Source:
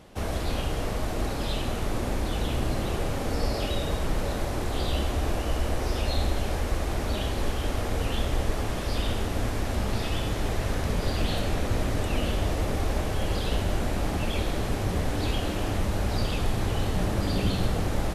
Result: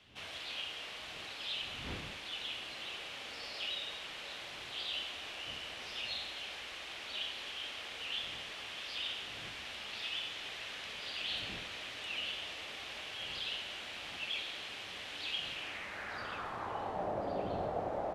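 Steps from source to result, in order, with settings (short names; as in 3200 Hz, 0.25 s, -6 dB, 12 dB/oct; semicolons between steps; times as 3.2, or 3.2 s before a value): wind noise 87 Hz -22 dBFS; band-pass sweep 3000 Hz -> 680 Hz, 15.49–17.13; gain +1 dB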